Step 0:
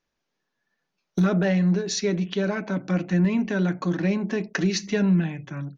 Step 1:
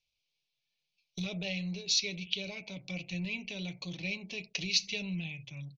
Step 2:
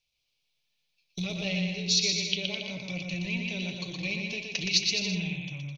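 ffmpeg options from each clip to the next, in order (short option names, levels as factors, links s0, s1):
-af "firequalizer=gain_entry='entry(120,0);entry(210,-15);entry(330,-17);entry(490,-9);entry(900,-13);entry(1600,-28);entry(2300,9);entry(4200,10);entry(7000,0);entry(11000,-9)':delay=0.05:min_phase=1,volume=0.473"
-af "aecho=1:1:120|210|277.5|328.1|366.1:0.631|0.398|0.251|0.158|0.1,volume=1.5"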